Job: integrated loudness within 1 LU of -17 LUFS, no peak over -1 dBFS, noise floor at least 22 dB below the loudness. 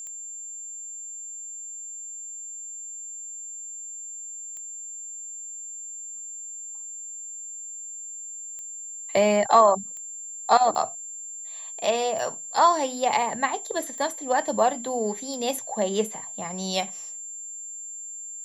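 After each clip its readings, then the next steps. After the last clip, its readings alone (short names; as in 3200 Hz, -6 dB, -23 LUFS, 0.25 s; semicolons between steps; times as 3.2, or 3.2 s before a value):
clicks 8; steady tone 7300 Hz; tone level -35 dBFS; loudness -27.5 LUFS; peak -5.0 dBFS; loudness target -17.0 LUFS
-> de-click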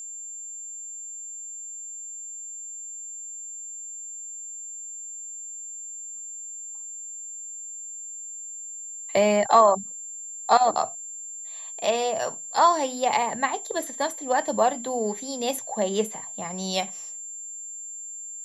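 clicks 0; steady tone 7300 Hz; tone level -35 dBFS
-> notch 7300 Hz, Q 30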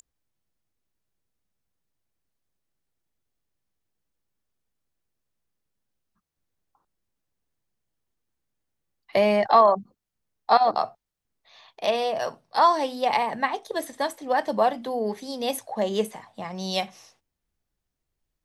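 steady tone none; loudness -24.0 LUFS; peak -5.0 dBFS; loudness target -17.0 LUFS
-> gain +7 dB; limiter -1 dBFS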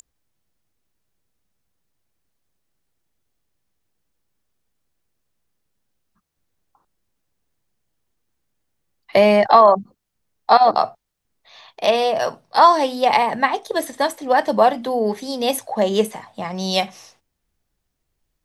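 loudness -17.5 LUFS; peak -1.0 dBFS; noise floor -76 dBFS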